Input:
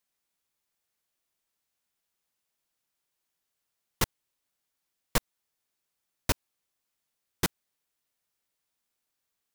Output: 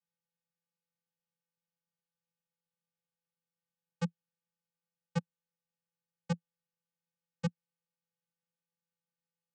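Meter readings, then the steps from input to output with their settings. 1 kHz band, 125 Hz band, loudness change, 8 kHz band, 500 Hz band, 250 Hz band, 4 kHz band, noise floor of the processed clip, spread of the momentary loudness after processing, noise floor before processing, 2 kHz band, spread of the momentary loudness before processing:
-10.0 dB, +0.5 dB, -6.5 dB, -21.5 dB, -6.0 dB, +0.5 dB, -16.5 dB, under -85 dBFS, 0 LU, -83 dBFS, -12.5 dB, 1 LU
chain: vocoder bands 8, square 169 Hz; gain -2.5 dB

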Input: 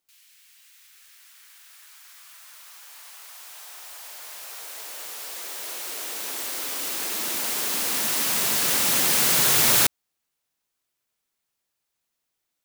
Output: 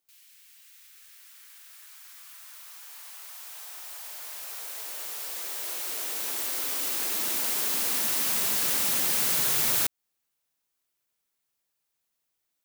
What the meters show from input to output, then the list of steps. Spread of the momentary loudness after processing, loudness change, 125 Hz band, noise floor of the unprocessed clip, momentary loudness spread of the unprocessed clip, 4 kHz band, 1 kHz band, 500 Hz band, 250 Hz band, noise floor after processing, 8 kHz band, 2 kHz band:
20 LU, -4.0 dB, -8.0 dB, -80 dBFS, 22 LU, -6.0 dB, -6.5 dB, -6.5 dB, -6.5 dB, -80 dBFS, -5.0 dB, -6.5 dB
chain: high shelf 11000 Hz +5 dB; compressor 3:1, threshold -21 dBFS, peak gain reduction 7 dB; gain -2.5 dB

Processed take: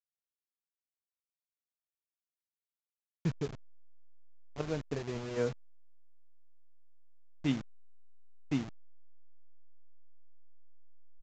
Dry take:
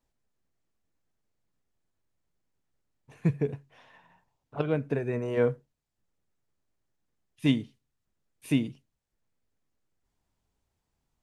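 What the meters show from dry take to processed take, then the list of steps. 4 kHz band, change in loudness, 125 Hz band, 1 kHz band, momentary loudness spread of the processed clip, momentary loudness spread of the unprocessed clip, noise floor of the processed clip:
-6.0 dB, -7.5 dB, -7.5 dB, -5.0 dB, 16 LU, 15 LU, under -85 dBFS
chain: level-crossing sampler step -30 dBFS; downsampling 16000 Hz; gain -7 dB

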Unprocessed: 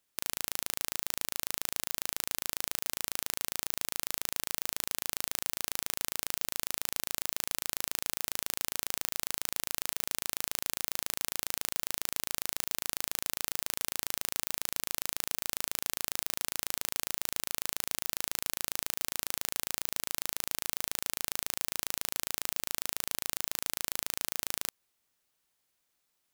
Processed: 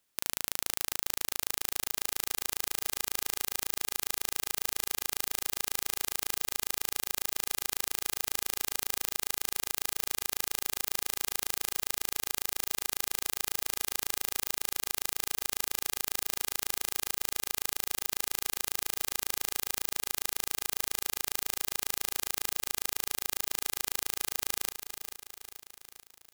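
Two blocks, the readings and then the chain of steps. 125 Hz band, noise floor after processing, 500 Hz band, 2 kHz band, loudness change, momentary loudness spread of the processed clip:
-0.5 dB, -75 dBFS, +1.5 dB, +1.5 dB, +1.5 dB, 0 LU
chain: feedback echo 0.437 s, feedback 56%, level -10 dB; short-mantissa float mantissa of 2-bit; gain +2.5 dB

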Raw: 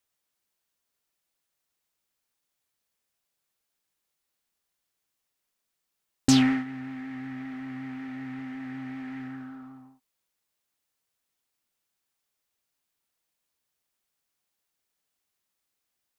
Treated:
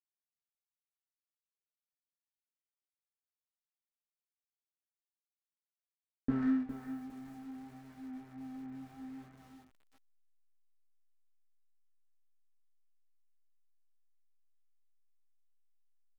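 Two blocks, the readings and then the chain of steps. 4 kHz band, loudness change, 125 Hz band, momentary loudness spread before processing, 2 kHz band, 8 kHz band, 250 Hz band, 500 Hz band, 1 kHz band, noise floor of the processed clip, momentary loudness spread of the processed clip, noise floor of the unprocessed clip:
under -30 dB, -10.0 dB, -13.5 dB, 19 LU, -17.0 dB, under -30 dB, -9.5 dB, -7.5 dB, -12.5 dB, under -85 dBFS, 19 LU, -82 dBFS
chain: in parallel at -11 dB: decimation with a swept rate 26×, swing 160% 0.59 Hz; on the sum: steep low-pass 1700 Hz 48 dB/oct; bell 930 Hz -7 dB 0.82 oct; comb 4.5 ms, depth 57%; de-hum 78.17 Hz, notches 16; backlash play -31 dBFS; chorus 0.64 Hz, delay 17 ms, depth 6.1 ms; lo-fi delay 0.408 s, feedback 35%, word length 8-bit, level -10.5 dB; gain -7.5 dB

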